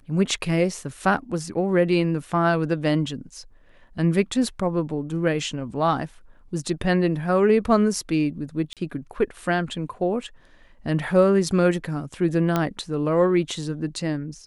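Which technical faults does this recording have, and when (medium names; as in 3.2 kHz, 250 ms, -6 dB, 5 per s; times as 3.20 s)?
8.73–8.77 s: dropout 37 ms
12.56 s: pop -9 dBFS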